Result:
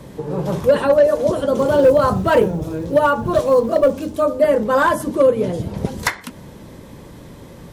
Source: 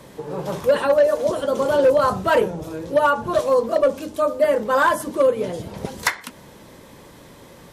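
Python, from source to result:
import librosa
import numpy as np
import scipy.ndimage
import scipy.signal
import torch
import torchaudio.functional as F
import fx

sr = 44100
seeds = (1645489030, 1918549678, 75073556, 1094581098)

y = fx.low_shelf(x, sr, hz=350.0, db=11.0)
y = fx.quant_companded(y, sr, bits=8, at=(1.57, 4.24))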